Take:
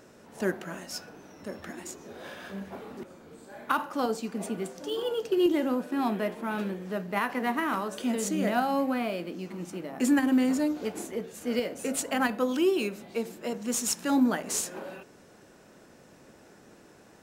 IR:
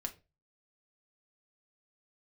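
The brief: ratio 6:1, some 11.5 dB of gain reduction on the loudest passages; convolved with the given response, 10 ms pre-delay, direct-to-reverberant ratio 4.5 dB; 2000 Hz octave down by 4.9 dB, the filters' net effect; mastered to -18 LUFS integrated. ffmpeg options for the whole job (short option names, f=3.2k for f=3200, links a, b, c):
-filter_complex "[0:a]equalizer=f=2k:t=o:g=-6.5,acompressor=threshold=-32dB:ratio=6,asplit=2[a][b];[1:a]atrim=start_sample=2205,adelay=10[c];[b][c]afir=irnorm=-1:irlink=0,volume=-3.5dB[d];[a][d]amix=inputs=2:normalize=0,volume=17.5dB"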